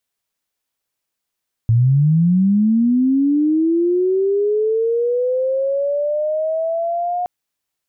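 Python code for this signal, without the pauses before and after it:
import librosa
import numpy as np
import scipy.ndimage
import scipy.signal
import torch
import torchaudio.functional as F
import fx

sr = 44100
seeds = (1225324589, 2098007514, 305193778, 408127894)

y = fx.chirp(sr, length_s=5.57, from_hz=110.0, to_hz=720.0, law='linear', from_db=-10.0, to_db=-18.0)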